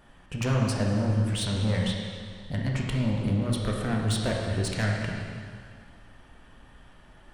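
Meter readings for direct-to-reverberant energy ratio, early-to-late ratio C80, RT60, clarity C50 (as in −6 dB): −1.5 dB, 2.5 dB, 2.1 s, 1.0 dB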